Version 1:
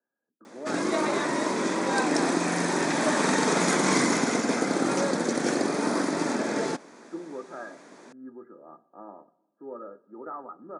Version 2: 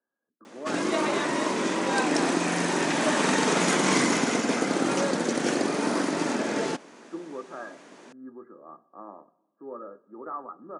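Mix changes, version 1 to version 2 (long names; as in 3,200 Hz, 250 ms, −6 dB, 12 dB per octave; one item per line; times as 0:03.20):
speech: remove Butterworth band-reject 1,100 Hz, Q 7
master: add parametric band 2,900 Hz +10 dB 0.3 octaves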